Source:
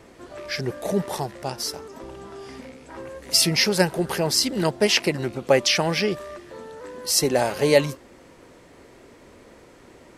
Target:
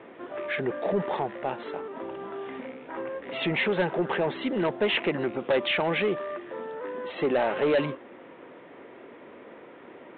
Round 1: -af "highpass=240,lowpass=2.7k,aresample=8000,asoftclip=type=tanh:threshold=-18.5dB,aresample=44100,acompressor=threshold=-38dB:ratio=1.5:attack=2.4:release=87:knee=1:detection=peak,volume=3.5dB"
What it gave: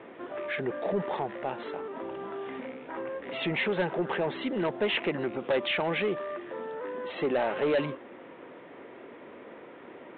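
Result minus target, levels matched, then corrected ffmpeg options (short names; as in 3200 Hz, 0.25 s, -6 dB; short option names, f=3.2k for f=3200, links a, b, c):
compressor: peak gain reduction +3 dB
-af "highpass=240,lowpass=2.7k,aresample=8000,asoftclip=type=tanh:threshold=-18.5dB,aresample=44100,acompressor=threshold=-29.5dB:ratio=1.5:attack=2.4:release=87:knee=1:detection=peak,volume=3.5dB"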